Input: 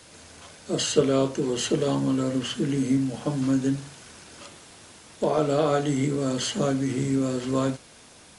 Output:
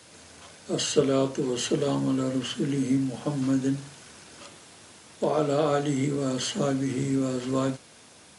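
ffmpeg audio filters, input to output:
ffmpeg -i in.wav -af "highpass=79,volume=-1.5dB" out.wav

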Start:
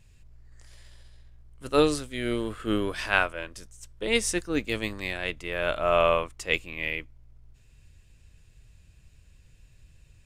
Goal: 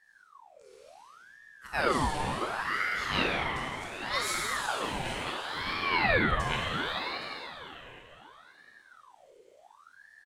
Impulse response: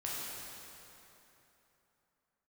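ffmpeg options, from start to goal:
-filter_complex "[0:a]aecho=1:1:816:0.178[link_01];[1:a]atrim=start_sample=2205[link_02];[link_01][link_02]afir=irnorm=-1:irlink=0,aeval=exprs='val(0)*sin(2*PI*1100*n/s+1100*0.6/0.69*sin(2*PI*0.69*n/s))':channel_layout=same,volume=-3.5dB"

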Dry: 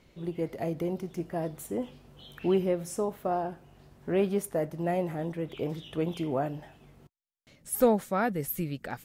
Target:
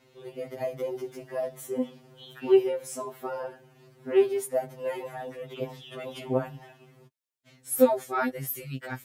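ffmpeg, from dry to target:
ffmpeg -i in.wav -af "highpass=48,equalizer=frequency=120:width=0.84:gain=-3,afftfilt=real='re*2.45*eq(mod(b,6),0)':imag='im*2.45*eq(mod(b,6),0)':win_size=2048:overlap=0.75,volume=4dB" out.wav

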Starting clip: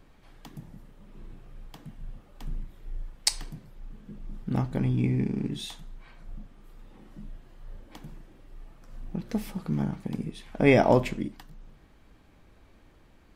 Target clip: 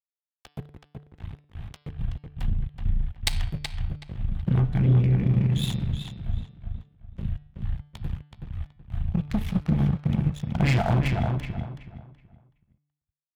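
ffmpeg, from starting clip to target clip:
ffmpeg -i in.wav -filter_complex "[0:a]agate=range=-33dB:threshold=-45dB:ratio=3:detection=peak,firequalizer=gain_entry='entry(170,0);entry(470,-27);entry(680,2);entry(960,-5);entry(1600,-1);entry(3500,2);entry(5000,-17);entry(11000,-11)':delay=0.05:min_phase=1,aeval=exprs='sgn(val(0))*max(abs(val(0))-0.00891,0)':channel_layout=same,asubboost=boost=8.5:cutoff=110,aeval=exprs='0.422*(cos(1*acos(clip(val(0)/0.422,-1,1)))-cos(1*PI/2))+0.0944*(cos(5*acos(clip(val(0)/0.422,-1,1)))-cos(5*PI/2))+0.0299*(cos(8*acos(clip(val(0)/0.422,-1,1)))-cos(8*PI/2))':channel_layout=same,highpass=59,bandreject=frequency=146.8:width_type=h:width=4,bandreject=frequency=293.6:width_type=h:width=4,bandreject=frequency=440.4:width_type=h:width=4,bandreject=frequency=587.2:width_type=h:width=4,bandreject=frequency=734:width_type=h:width=4,bandreject=frequency=880.8:width_type=h:width=4,bandreject=frequency=1027.6:width_type=h:width=4,bandreject=frequency=1174.4:width_type=h:width=4,bandreject=frequency=1321.2:width_type=h:width=4,bandreject=frequency=1468:width_type=h:width=4,bandreject=frequency=1614.8:width_type=h:width=4,bandreject=frequency=1761.6:width_type=h:width=4,bandreject=frequency=1908.4:width_type=h:width=4,bandreject=frequency=2055.2:width_type=h:width=4,bandreject=frequency=2202:width_type=h:width=4,bandreject=frequency=2348.8:width_type=h:width=4,bandreject=frequency=2495.6:width_type=h:width=4,bandreject=frequency=2642.4:width_type=h:width=4,bandreject=frequency=2789.2:width_type=h:width=4,bandreject=frequency=2936:width_type=h:width=4,bandreject=frequency=3082.8:width_type=h:width=4,bandreject=frequency=3229.6:width_type=h:width=4,bandreject=frequency=3376.4:width_type=h:width=4,bandreject=frequency=3523.2:width_type=h:width=4,bandreject=frequency=3670:width_type=h:width=4,bandreject=frequency=3816.8:width_type=h:width=4,bandreject=frequency=3963.6:width_type=h:width=4,bandreject=frequency=4110.4:width_type=h:width=4,bandreject=frequency=4257.2:width_type=h:width=4,bandreject=frequency=4404:width_type=h:width=4,bandreject=frequency=4550.8:width_type=h:width=4,bandreject=frequency=4697.6:width_type=h:width=4,bandreject=frequency=4844.4:width_type=h:width=4,bandreject=frequency=4991.2:width_type=h:width=4,bandreject=frequency=5138:width_type=h:width=4,bandreject=frequency=5284.8:width_type=h:width=4,bandreject=frequency=5431.6:width_type=h:width=4,acompressor=threshold=-32dB:ratio=3,asplit=2[link_01][link_02];[link_02]adelay=375,lowpass=frequency=3500:poles=1,volume=-5dB,asplit=2[link_03][link_04];[link_04]adelay=375,lowpass=frequency=3500:poles=1,volume=0.27,asplit=2[link_05][link_06];[link_06]adelay=375,lowpass=frequency=3500:poles=1,volume=0.27,asplit=2[link_07][link_08];[link_08]adelay=375,lowpass=frequency=3500:poles=1,volume=0.27[link_09];[link_01][link_03][link_05][link_07][link_09]amix=inputs=5:normalize=0,volume=8.5dB" out.wav

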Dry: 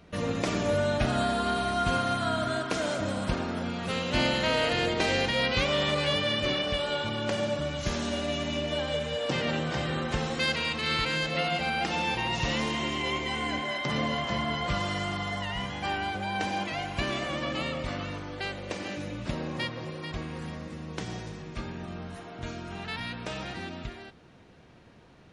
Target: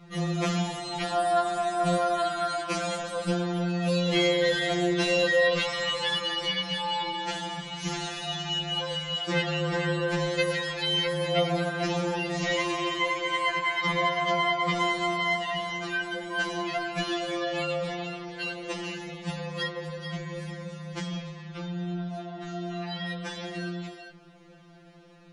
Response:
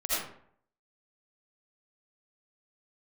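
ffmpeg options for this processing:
-filter_complex "[0:a]asettb=1/sr,asplit=3[link_01][link_02][link_03];[link_01]atrim=end=21.064[link_04];[link_02]atrim=start=21.06:end=23.08,asetpts=PTS-STARTPTS,afade=type=in:duration=0.004:curve=qsin,afade=type=out:start_time=2.016:duration=0.004:curve=qsin,lowpass=4900[link_05];[link_03]atrim=start=23.076[link_06];[link_04][link_05]acrossfade=duration=0.004:curve1=hsin:curve2=qsin[link_07];[link_07][link_06]acrossfade=duration=0.004:curve1=qsin:curve2=hsin,afftfilt=real='re*2.83*eq(mod(b,8),0)':imag='im*2.83*eq(mod(b,8),0)':win_size=2048:overlap=0.75,volume=4dB"

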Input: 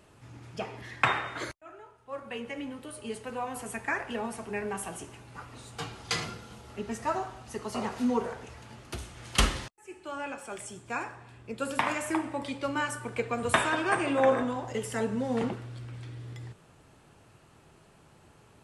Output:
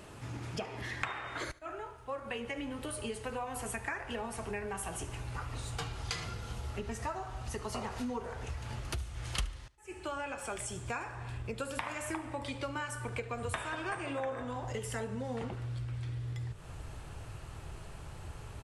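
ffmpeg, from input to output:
ffmpeg -i in.wav -filter_complex "[0:a]asubboost=boost=7.5:cutoff=76,acompressor=threshold=-44dB:ratio=6,asplit=2[link_01][link_02];[link_02]aecho=0:1:73|146|219:0.0891|0.0419|0.0197[link_03];[link_01][link_03]amix=inputs=2:normalize=0,volume=8dB" out.wav

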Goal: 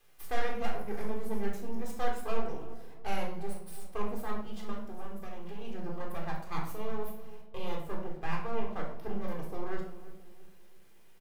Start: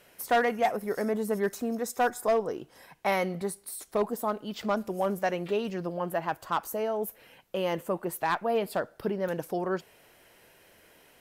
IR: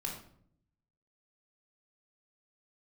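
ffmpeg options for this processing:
-filter_complex "[0:a]asettb=1/sr,asplit=3[link_01][link_02][link_03];[link_01]atrim=end=4.704[link_04];[link_02]atrim=start=4.7:end=5.62,asetpts=PTS-STARTPTS,afade=type=in:duration=0.004:curve=qsin,afade=type=out:start_time=0.916:duration=0.004:curve=qsin,acompressor=threshold=-33dB:ratio=6[link_05];[link_03]atrim=start=5.616[link_06];[link_04][link_05]acrossfade=duration=0.004:curve1=hsin:curve2=qsin[link_07];[link_07][link_06]acrossfade=duration=0.004:curve1=qsin:curve2=hsin,asettb=1/sr,asplit=3[link_08][link_09][link_10];[link_08]atrim=end=7.974[link_11];[link_09]atrim=start=7.97:end=8.95,asetpts=PTS-STARTPTS,afade=type=in:duration=0.004:curve=qsin,afade=type=out:start_time=0.976:duration=0.004:curve=qsin,lowpass=frequency=2600:width=0.5412,lowpass=frequency=2600:width=1.3066[link_12];[link_10]atrim=start=8.946[link_13];[link_11][link_12]acrossfade=duration=0.004:curve1=hsin:curve2=qsin[link_14];[link_14][link_13]acrossfade=duration=0.004:curve1=qsin:curve2=hsin,aeval=exprs='max(val(0),0)':channel_layout=same,acrusher=bits=9:mix=0:aa=0.000001,asplit=2[link_15][link_16];[link_16]adelay=336,lowpass=frequency=890:poles=1,volume=-13.5dB,asplit=2[link_17][link_18];[link_18]adelay=336,lowpass=frequency=890:poles=1,volume=0.46,asplit=2[link_19][link_20];[link_20]adelay=336,lowpass=frequency=890:poles=1,volume=0.46,asplit=2[link_21][link_22];[link_22]adelay=336,lowpass=frequency=890:poles=1,volume=0.46[link_23];[link_15][link_17][link_19][link_21][link_23]amix=inputs=5:normalize=0[link_24];[1:a]atrim=start_sample=2205[link_25];[link_24][link_25]afir=irnorm=-1:irlink=0,volume=-6.5dB"

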